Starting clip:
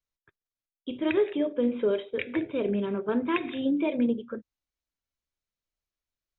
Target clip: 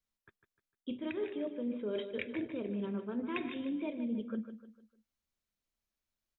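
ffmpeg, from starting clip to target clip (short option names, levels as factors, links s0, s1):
-af "equalizer=f=220:t=o:w=0.31:g=9,areverse,acompressor=threshold=0.02:ratio=12,areverse,aecho=1:1:151|302|453|604:0.299|0.119|0.0478|0.0191"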